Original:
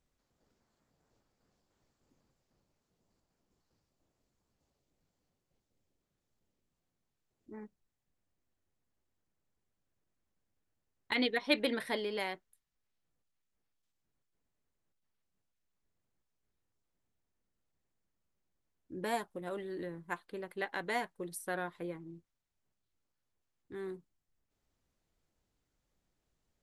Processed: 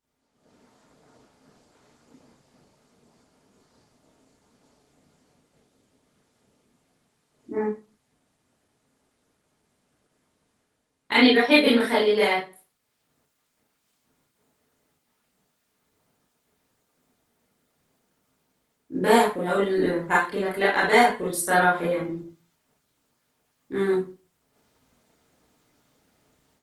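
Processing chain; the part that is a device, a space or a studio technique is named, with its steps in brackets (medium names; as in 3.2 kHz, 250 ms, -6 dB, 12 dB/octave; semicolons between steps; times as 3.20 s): 21.02–22.13 s: de-hum 117.5 Hz, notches 35; far-field microphone of a smart speaker (reverberation RT60 0.35 s, pre-delay 24 ms, DRR -8 dB; high-pass 140 Hz 12 dB/octave; level rider gain up to 15 dB; trim -2.5 dB; Opus 20 kbps 48 kHz)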